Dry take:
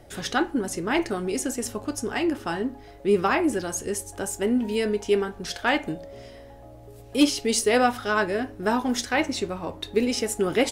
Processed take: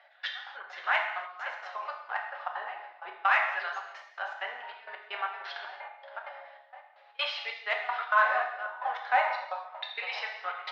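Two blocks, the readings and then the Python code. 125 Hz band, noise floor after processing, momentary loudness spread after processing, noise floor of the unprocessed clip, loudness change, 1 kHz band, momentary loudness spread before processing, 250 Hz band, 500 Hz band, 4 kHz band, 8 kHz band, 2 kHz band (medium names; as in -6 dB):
under -40 dB, -58 dBFS, 17 LU, -46 dBFS, -6.0 dB, -1.0 dB, 10 LU, under -40 dB, -15.5 dB, -7.0 dB, under -30 dB, -0.5 dB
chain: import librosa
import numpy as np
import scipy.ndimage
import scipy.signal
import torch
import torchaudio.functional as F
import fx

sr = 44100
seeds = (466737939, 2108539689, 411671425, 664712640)

p1 = scipy.signal.sosfilt(scipy.signal.ellip(3, 1.0, 40, [680.0, 4200.0], 'bandpass', fs=sr, output='sos'), x)
p2 = 10.0 ** (-22.5 / 20.0) * np.tanh(p1 / 10.0 ** (-22.5 / 20.0))
p3 = p1 + (p2 * 10.0 ** (-6.5 / 20.0))
p4 = fx.filter_lfo_bandpass(p3, sr, shape='saw_down', hz=0.31, low_hz=860.0, high_hz=1800.0, q=1.2)
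p5 = p4 + fx.echo_filtered(p4, sr, ms=518, feedback_pct=23, hz=2700.0, wet_db=-11, dry=0)
p6 = fx.step_gate(p5, sr, bpm=194, pattern='x..x..xx.xxx', floor_db=-24.0, edge_ms=4.5)
p7 = fx.cheby_harmonics(p6, sr, harmonics=(5,), levels_db=(-44,), full_scale_db=-12.0)
y = fx.rev_gated(p7, sr, seeds[0], gate_ms=320, shape='falling', drr_db=1.0)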